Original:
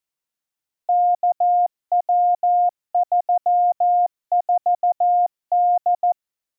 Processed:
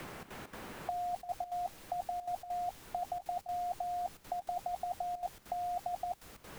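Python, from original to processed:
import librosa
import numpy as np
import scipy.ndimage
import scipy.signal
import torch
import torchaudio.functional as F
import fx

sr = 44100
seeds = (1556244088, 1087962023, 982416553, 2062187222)

y = fx.peak_eq(x, sr, hz=790.0, db=5.0, octaves=0.27)
y = fx.over_compress(y, sr, threshold_db=-31.0, ratio=-0.5)
y = fx.dmg_noise_colour(y, sr, seeds[0], colour='pink', level_db=-58.0)
y = fx.step_gate(y, sr, bpm=198, pattern='xxx.xx.xxxxxx', floor_db=-12.0, edge_ms=4.5)
y = fx.band_squash(y, sr, depth_pct=70)
y = y * librosa.db_to_amplitude(2.5)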